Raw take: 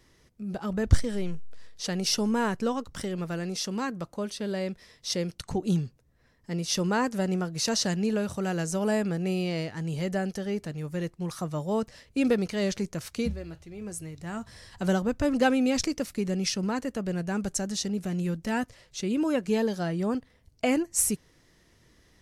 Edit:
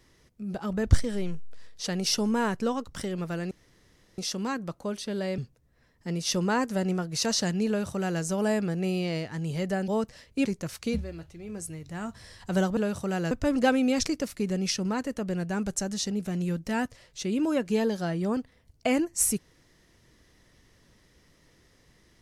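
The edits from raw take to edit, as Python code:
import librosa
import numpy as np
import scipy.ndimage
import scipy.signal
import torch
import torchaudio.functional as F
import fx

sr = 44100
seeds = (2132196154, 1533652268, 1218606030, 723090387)

y = fx.edit(x, sr, fx.insert_room_tone(at_s=3.51, length_s=0.67),
    fx.cut(start_s=4.71, length_s=1.1),
    fx.duplicate(start_s=8.11, length_s=0.54, to_s=15.09),
    fx.cut(start_s=10.31, length_s=1.36),
    fx.cut(start_s=12.24, length_s=0.53), tone=tone)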